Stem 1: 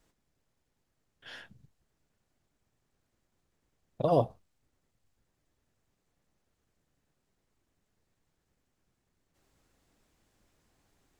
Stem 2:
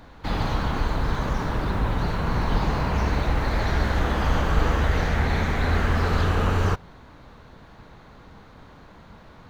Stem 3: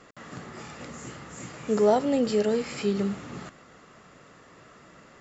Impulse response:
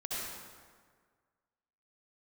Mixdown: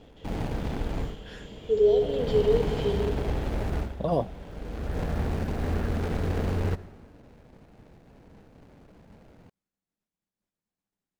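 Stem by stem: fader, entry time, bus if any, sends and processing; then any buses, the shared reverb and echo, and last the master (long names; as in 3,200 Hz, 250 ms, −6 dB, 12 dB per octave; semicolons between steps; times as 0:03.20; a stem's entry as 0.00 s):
−1.0 dB, 0.00 s, no send, downward expander −58 dBFS; parametric band 190 Hz +12.5 dB 0.43 octaves
−1.5 dB, 0.00 s, send −19 dB, running median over 41 samples; automatic ducking −21 dB, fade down 0.20 s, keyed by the first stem
+2.0 dB, 0.00 s, send −5 dB, pair of resonant band-passes 1,200 Hz, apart 2.9 octaves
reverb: on, RT60 1.7 s, pre-delay 58 ms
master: low-shelf EQ 140 Hz −6.5 dB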